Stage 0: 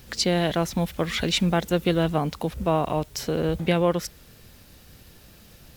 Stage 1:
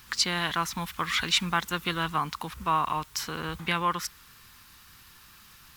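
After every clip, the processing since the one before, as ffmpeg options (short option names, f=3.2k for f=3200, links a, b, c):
-af "lowshelf=f=800:t=q:w=3:g=-10"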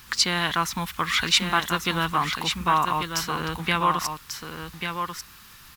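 -af "aecho=1:1:1141:0.473,volume=4dB"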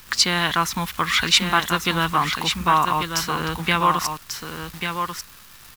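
-af "acrusher=bits=8:dc=4:mix=0:aa=0.000001,volume=3.5dB"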